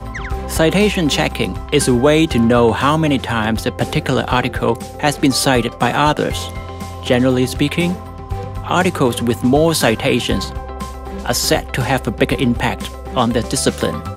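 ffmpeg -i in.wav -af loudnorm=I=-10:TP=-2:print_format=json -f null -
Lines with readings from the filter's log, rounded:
"input_i" : "-16.6",
"input_tp" : "-1.2",
"input_lra" : "2.9",
"input_thresh" : "-26.9",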